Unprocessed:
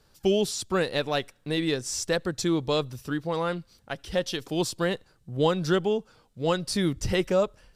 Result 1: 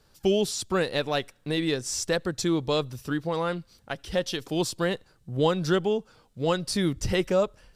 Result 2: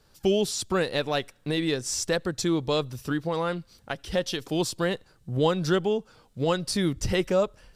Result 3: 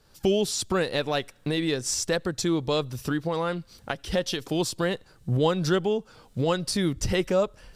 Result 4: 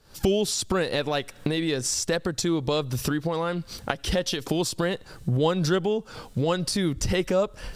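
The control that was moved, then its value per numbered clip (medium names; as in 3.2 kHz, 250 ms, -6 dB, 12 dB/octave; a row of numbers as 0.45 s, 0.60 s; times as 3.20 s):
recorder AGC, rising by: 5 dB/s, 13 dB/s, 32 dB/s, 91 dB/s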